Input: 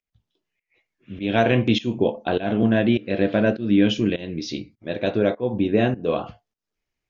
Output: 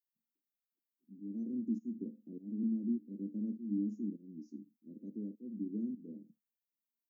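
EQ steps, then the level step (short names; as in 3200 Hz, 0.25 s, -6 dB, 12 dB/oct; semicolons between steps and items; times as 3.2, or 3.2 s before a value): steep high-pass 240 Hz 48 dB/oct; inverse Chebyshev band-stop 780–3600 Hz, stop band 80 dB; +4.5 dB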